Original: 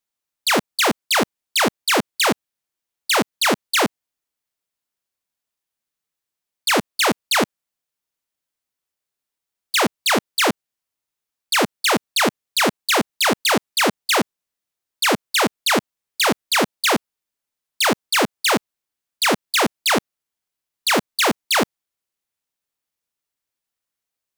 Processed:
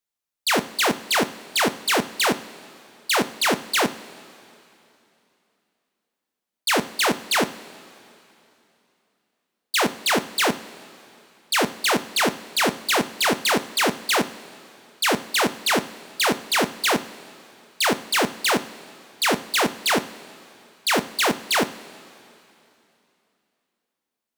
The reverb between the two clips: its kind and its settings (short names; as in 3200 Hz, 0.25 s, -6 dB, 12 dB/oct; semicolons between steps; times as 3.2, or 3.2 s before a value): two-slope reverb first 0.39 s, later 3 s, from -15 dB, DRR 10 dB; gain -3 dB